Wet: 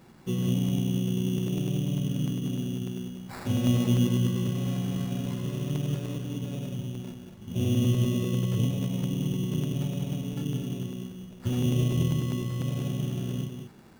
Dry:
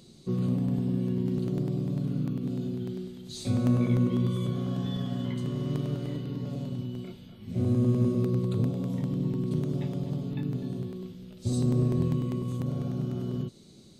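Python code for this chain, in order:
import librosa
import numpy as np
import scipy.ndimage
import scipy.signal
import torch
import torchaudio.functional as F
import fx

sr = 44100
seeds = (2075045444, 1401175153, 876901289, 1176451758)

y = x + 10.0 ** (-7.5 / 20.0) * np.pad(x, (int(185 * sr / 1000.0), 0))[:len(x)]
y = fx.env_lowpass_down(y, sr, base_hz=2100.0, full_db=-21.0)
y = fx.sample_hold(y, sr, seeds[0], rate_hz=3100.0, jitter_pct=0)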